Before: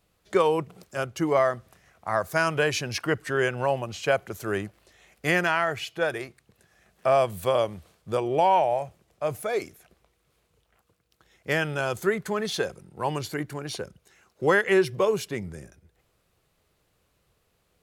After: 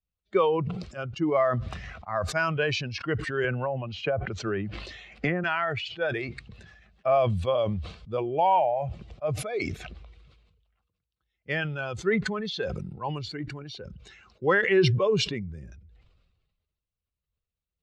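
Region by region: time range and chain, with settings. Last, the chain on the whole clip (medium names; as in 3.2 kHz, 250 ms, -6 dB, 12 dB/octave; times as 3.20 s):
3.44–5.44 s: low-pass that closes with the level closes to 1.1 kHz, closed at -19.5 dBFS + three bands compressed up and down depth 100%
whole clip: expander on every frequency bin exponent 1.5; low-pass 4.5 kHz 24 dB/octave; decay stretcher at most 40 dB/s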